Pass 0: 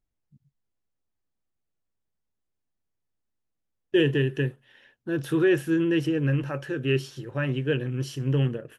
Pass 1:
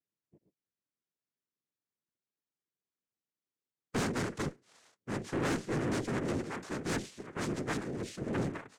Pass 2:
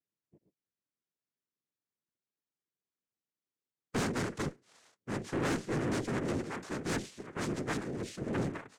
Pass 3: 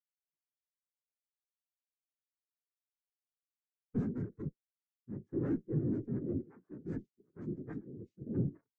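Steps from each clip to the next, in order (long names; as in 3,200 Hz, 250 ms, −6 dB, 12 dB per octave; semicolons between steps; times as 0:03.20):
cochlear-implant simulation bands 3; tube saturation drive 22 dB, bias 0.45; level −5.5 dB
no processing that can be heard
low-shelf EQ 78 Hz +6 dB; every bin expanded away from the loudest bin 2.5 to 1; level +1 dB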